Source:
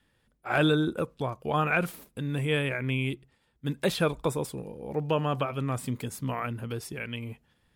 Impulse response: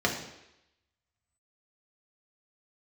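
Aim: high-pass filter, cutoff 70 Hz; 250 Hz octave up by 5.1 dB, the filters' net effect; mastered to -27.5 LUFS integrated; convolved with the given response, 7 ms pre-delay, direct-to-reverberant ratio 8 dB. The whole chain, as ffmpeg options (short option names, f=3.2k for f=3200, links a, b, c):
-filter_complex "[0:a]highpass=70,equalizer=f=250:t=o:g=7,asplit=2[a][b];[1:a]atrim=start_sample=2205,adelay=7[c];[b][c]afir=irnorm=-1:irlink=0,volume=-20dB[d];[a][d]amix=inputs=2:normalize=0,volume=-1dB"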